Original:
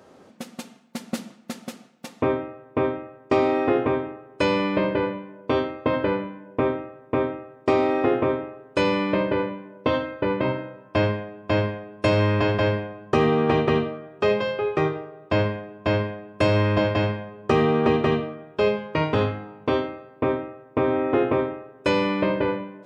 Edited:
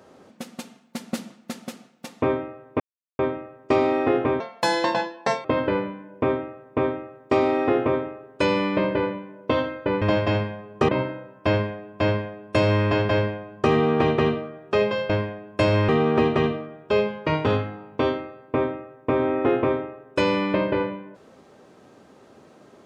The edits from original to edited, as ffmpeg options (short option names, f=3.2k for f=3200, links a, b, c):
-filter_complex "[0:a]asplit=8[a][b][c][d][e][f][g][h];[a]atrim=end=2.8,asetpts=PTS-STARTPTS,afade=t=out:st=2.796:d=0.004:c=hsin,apad=pad_dur=0.39[i];[b]atrim=start=2.8:end=4.014,asetpts=PTS-STARTPTS,afade=t=in:d=0.004:c=hsin[j];[c]atrim=start=4.01:end=5.81,asetpts=PTS-STARTPTS,asetrate=75852,aresample=44100,atrim=end_sample=46151,asetpts=PTS-STARTPTS[k];[d]atrim=start=5.806:end=10.382[l];[e]atrim=start=16.698:end=17.572[m];[f]atrim=start=10.378:end=14.592[n];[g]atrim=start=15.908:end=16.702[o];[h]atrim=start=17.568[p];[i][j]concat=n=2:v=0:a=1[q];[q][k]acrossfade=d=0.004:c1=hsin:c2=hsin[r];[r][l]acrossfade=d=0.004:c1=hsin:c2=hsin[s];[s][m]acrossfade=d=0.004:c1=hsin:c2=hsin[t];[t][n]acrossfade=d=0.004:c1=hsin:c2=hsin[u];[u][o]acrossfade=d=0.004:c1=hsin:c2=hsin[v];[v][p]acrossfade=d=0.004:c1=hsin:c2=hsin"